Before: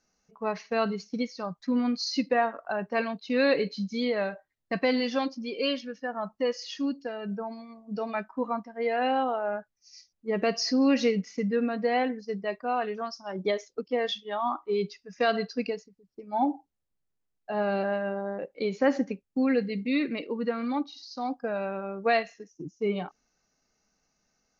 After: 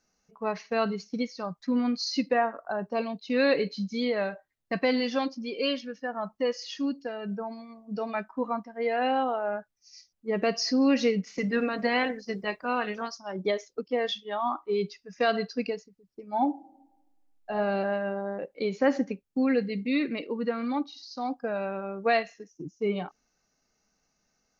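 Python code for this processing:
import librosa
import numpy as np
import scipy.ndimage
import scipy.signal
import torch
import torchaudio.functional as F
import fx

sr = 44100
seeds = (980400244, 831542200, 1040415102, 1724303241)

y = fx.peak_eq(x, sr, hz=fx.line((2.37, 4500.0), (3.27, 1200.0)), db=-15.0, octaves=0.65, at=(2.37, 3.27), fade=0.02)
y = fx.spec_clip(y, sr, under_db=13, at=(11.26, 13.17), fade=0.02)
y = fx.reverb_throw(y, sr, start_s=16.51, length_s=1.02, rt60_s=1.1, drr_db=4.5)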